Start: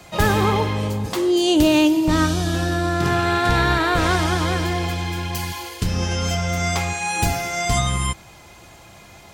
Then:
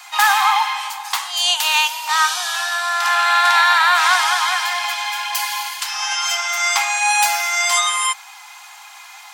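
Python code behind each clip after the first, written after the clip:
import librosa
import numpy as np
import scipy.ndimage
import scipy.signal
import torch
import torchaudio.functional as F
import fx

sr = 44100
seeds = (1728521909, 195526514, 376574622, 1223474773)

y = scipy.signal.sosfilt(scipy.signal.butter(16, 760.0, 'highpass', fs=sr, output='sos'), x)
y = y * 10.0 ** (8.0 / 20.0)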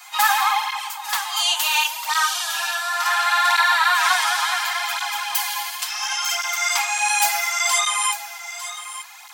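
y = fx.high_shelf(x, sr, hz=11000.0, db=9.5)
y = y + 10.0 ** (-12.0 / 20.0) * np.pad(y, (int(898 * sr / 1000.0), 0))[:len(y)]
y = fx.flanger_cancel(y, sr, hz=0.7, depth_ms=7.8)
y = y * 10.0 ** (-1.0 / 20.0)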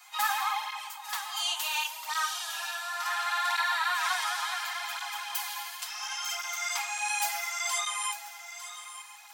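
y = fx.comb_fb(x, sr, f0_hz=630.0, decay_s=0.4, harmonics='all', damping=0.0, mix_pct=60)
y = fx.echo_feedback(y, sr, ms=1039, feedback_pct=50, wet_db=-20)
y = y * 10.0 ** (-3.5 / 20.0)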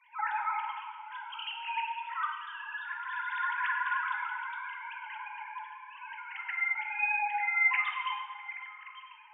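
y = fx.sine_speech(x, sr)
y = scipy.signal.sosfilt(scipy.signal.butter(4, 900.0, 'highpass', fs=sr, output='sos'), y)
y = fx.rev_plate(y, sr, seeds[0], rt60_s=1.5, hf_ratio=0.85, predelay_ms=0, drr_db=2.5)
y = y * 10.0 ** (-3.0 / 20.0)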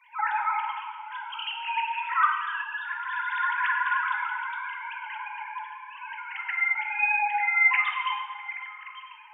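y = fx.spec_box(x, sr, start_s=1.93, length_s=0.7, low_hz=950.0, high_hz=2700.0, gain_db=6)
y = y * 10.0 ** (5.5 / 20.0)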